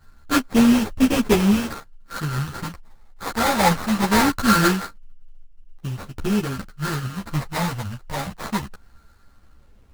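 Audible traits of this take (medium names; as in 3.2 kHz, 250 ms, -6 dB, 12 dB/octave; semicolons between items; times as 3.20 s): a buzz of ramps at a fixed pitch in blocks of 32 samples; phasing stages 8, 0.22 Hz, lowest notch 360–1300 Hz; aliases and images of a low sample rate 2.9 kHz, jitter 20%; a shimmering, thickened sound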